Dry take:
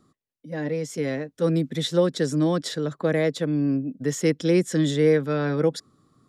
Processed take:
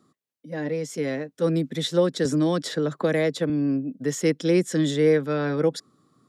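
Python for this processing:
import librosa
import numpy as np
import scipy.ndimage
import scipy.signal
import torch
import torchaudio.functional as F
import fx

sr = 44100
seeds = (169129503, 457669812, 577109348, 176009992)

y = scipy.signal.sosfilt(scipy.signal.butter(2, 140.0, 'highpass', fs=sr, output='sos'), x)
y = fx.band_squash(y, sr, depth_pct=70, at=(2.25, 3.5))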